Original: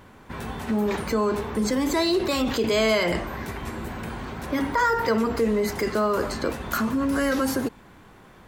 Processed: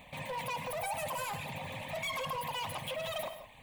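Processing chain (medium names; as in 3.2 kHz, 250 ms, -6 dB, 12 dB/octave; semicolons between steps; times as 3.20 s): reverb removal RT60 0.96 s; in parallel at -1.5 dB: compression, threshold -33 dBFS, peak gain reduction 14 dB; on the sum: static phaser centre 600 Hz, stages 6; saturation -27.5 dBFS, distortion -9 dB; echo whose repeats swap between lows and highs 125 ms, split 1.2 kHz, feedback 54%, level -12.5 dB; gated-style reverb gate 430 ms rising, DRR 9 dB; speed mistake 33 rpm record played at 78 rpm; trim -6.5 dB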